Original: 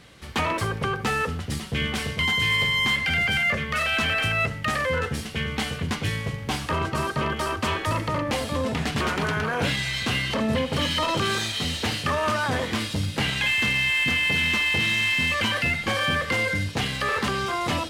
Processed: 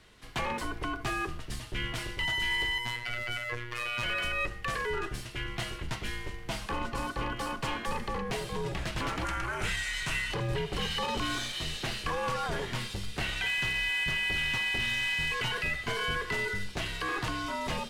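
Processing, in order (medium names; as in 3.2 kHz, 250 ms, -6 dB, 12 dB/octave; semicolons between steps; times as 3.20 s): frequency shift -96 Hz; 2.78–4.03 s: robot voice 120 Hz; 9.25–10.32 s: ten-band graphic EQ 250 Hz -4 dB, 500 Hz -5 dB, 2 kHz +4 dB, 4 kHz -4 dB, 8 kHz +7 dB; trim -7.5 dB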